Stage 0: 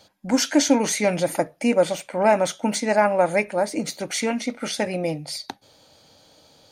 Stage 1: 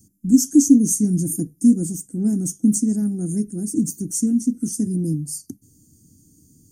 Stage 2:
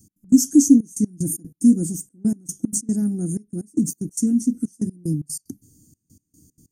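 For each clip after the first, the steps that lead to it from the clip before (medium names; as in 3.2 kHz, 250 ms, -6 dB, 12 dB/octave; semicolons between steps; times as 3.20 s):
inverse Chebyshev band-stop 540–4100 Hz, stop band 40 dB; trim +9 dB
trance gate "x.x.xxxxxx..x..x" 187 bpm -24 dB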